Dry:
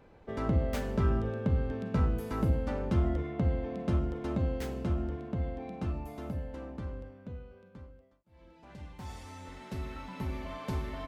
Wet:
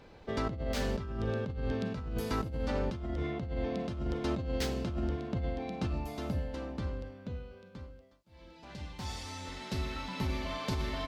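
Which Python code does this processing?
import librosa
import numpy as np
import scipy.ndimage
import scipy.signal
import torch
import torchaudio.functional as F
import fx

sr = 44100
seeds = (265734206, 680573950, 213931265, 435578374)

y = fx.peak_eq(x, sr, hz=4500.0, db=10.5, octaves=1.4)
y = fx.over_compress(y, sr, threshold_db=-33.0, ratio=-1.0)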